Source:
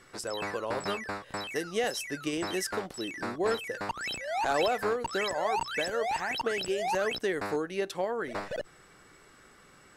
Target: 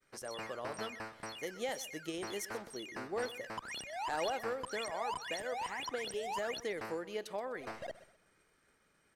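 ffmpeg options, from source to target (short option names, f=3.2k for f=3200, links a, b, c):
-af "agate=range=-33dB:threshold=-50dB:ratio=3:detection=peak,aecho=1:1:137|274|411:0.15|0.0434|0.0126,asetrate=48000,aresample=44100,volume=-8.5dB"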